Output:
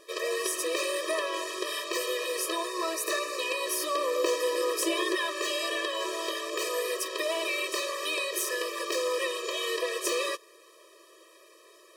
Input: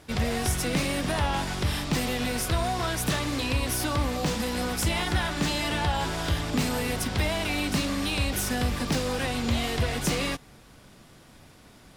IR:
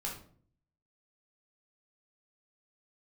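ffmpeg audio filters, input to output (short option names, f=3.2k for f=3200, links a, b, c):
-filter_complex "[0:a]asettb=1/sr,asplit=3[a][b][c];[a]atrim=end=2.674[d];[b]atrim=start=2.67:end=3.39,asetpts=PTS-STARTPTS,afade=t=in:d=0.004:c=qsin,afade=t=out:st=0.716:d=0.004:c=qsin,bandreject=f=3.2k:w=6.3[e];[c]atrim=start=3.386[f];[d][e]acrossfade=d=0.004:c1=hsin:c2=qsin[g];[g][f]acrossfade=d=0.004:c1=qsin:c2=hsin,asettb=1/sr,asplit=3[h][i][j];[h]atrim=end=3.974[k];[i]atrim=start=3.97:end=5.15,asetpts=PTS-STARTPTS,afade=t=in:d=0.004:c=qsin,afade=t=out:st=1.176:d=0.004:c=qsin,lowshelf=f=430:g=10[l];[j]atrim=start=5.146[m];[k][l]acrossfade=d=0.004:c1=hsin:c2=qsin[n];[n][m]acrossfade=d=0.004:c1=qsin:c2=hsin,afftfilt=real='re*eq(mod(floor(b*sr/1024/330),2),1)':imag='im*eq(mod(floor(b*sr/1024/330),2),1)':win_size=1024:overlap=0.75,volume=2.5dB"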